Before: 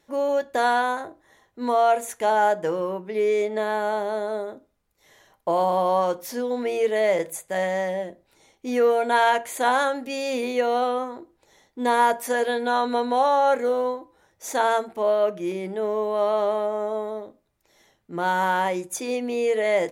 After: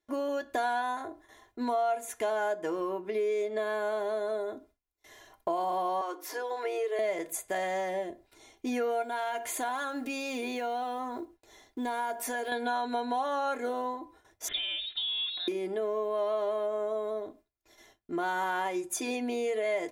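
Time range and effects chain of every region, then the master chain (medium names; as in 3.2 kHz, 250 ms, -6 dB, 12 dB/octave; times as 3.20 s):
6.01–6.99 s: rippled Chebyshev high-pass 290 Hz, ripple 6 dB + three bands compressed up and down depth 40%
9.02–12.52 s: block-companded coder 7-bit + gate with hold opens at -52 dBFS, closes at -55 dBFS + compression 2:1, threshold -32 dBFS
14.48–15.48 s: compression, threshold -27 dBFS + frequency inversion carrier 4 kHz
whole clip: gate with hold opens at -49 dBFS; comb 2.9 ms, depth 62%; compression 3:1, threshold -31 dBFS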